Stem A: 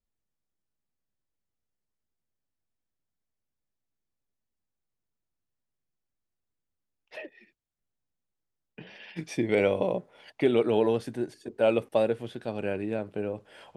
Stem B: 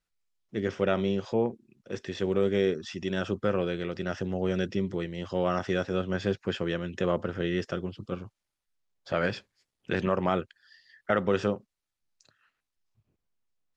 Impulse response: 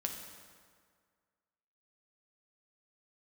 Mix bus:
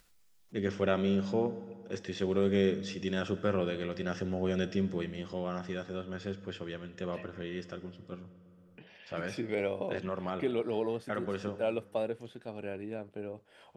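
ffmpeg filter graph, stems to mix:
-filter_complex "[0:a]volume=0.376[s0];[1:a]highshelf=f=6600:g=6,volume=0.473,afade=t=out:st=5.09:d=0.36:silence=0.446684,asplit=2[s1][s2];[s2]volume=0.501[s3];[2:a]atrim=start_sample=2205[s4];[s3][s4]afir=irnorm=-1:irlink=0[s5];[s0][s1][s5]amix=inputs=3:normalize=0,acompressor=mode=upward:threshold=0.00282:ratio=2.5"

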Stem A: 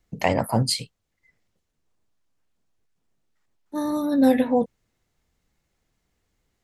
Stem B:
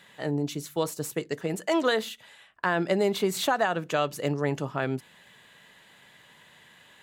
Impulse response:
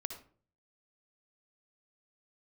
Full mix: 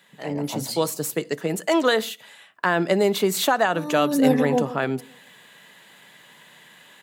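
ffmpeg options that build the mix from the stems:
-filter_complex "[0:a]volume=0.355,afade=t=in:st=3.8:d=0.32:silence=0.446684,asplit=2[s0][s1];[s1]volume=0.2[s2];[1:a]highshelf=f=11000:g=7.5,volume=0.631,asplit=2[s3][s4];[s4]volume=0.126[s5];[2:a]atrim=start_sample=2205[s6];[s5][s6]afir=irnorm=-1:irlink=0[s7];[s2]aecho=0:1:141|282|423|564|705|846:1|0.44|0.194|0.0852|0.0375|0.0165[s8];[s0][s3][s7][s8]amix=inputs=4:normalize=0,highpass=f=140:w=0.5412,highpass=f=140:w=1.3066,dynaudnorm=f=120:g=7:m=2.51"

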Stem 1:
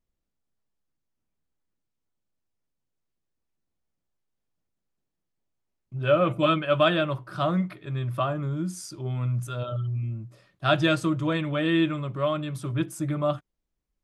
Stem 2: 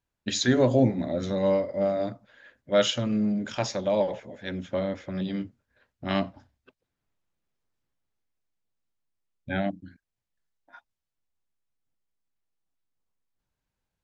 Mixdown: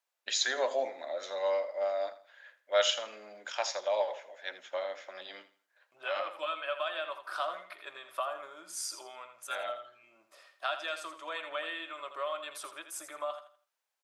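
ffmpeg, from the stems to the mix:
-filter_complex "[0:a]acompressor=threshold=0.0282:ratio=16,volume=1.41,asplit=3[s0][s1][s2];[s1]volume=0.316[s3];[1:a]volume=0.841,asplit=2[s4][s5];[s5]volume=0.178[s6];[s2]apad=whole_len=618985[s7];[s4][s7]sidechaincompress=threshold=0.0178:ratio=8:attack=16:release=210[s8];[s3][s6]amix=inputs=2:normalize=0,aecho=0:1:82|164|246|328:1|0.29|0.0841|0.0244[s9];[s0][s8][s9]amix=inputs=3:normalize=0,highpass=f=620:w=0.5412,highpass=f=620:w=1.3066"

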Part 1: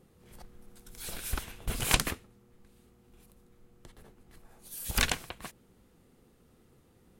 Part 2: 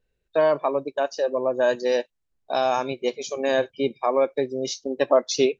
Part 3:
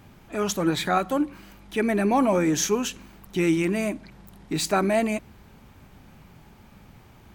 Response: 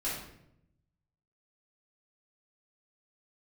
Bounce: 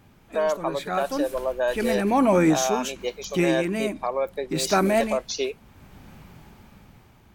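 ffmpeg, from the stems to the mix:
-filter_complex "[0:a]alimiter=limit=0.112:level=0:latency=1:release=439,volume=0.355,asplit=2[s0][s1];[s1]volume=0.335[s2];[1:a]volume=0.841,asplit=2[s3][s4];[2:a]dynaudnorm=f=340:g=7:m=3.35,volume=0.596[s5];[s4]apad=whole_len=323863[s6];[s5][s6]sidechaincompress=threshold=0.0501:ratio=3:attack=8.5:release=698[s7];[s0][s3]amix=inputs=2:normalize=0,highpass=450,alimiter=limit=0.168:level=0:latency=1:release=340,volume=1[s8];[3:a]atrim=start_sample=2205[s9];[s2][s9]afir=irnorm=-1:irlink=0[s10];[s7][s8][s10]amix=inputs=3:normalize=0"

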